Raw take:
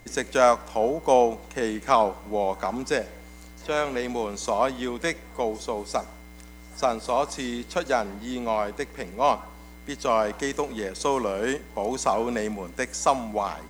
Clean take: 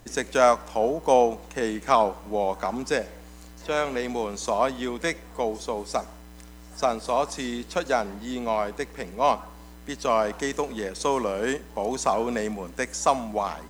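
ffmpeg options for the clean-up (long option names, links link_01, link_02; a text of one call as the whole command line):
ffmpeg -i in.wav -af "bandreject=frequency=2100:width=30" out.wav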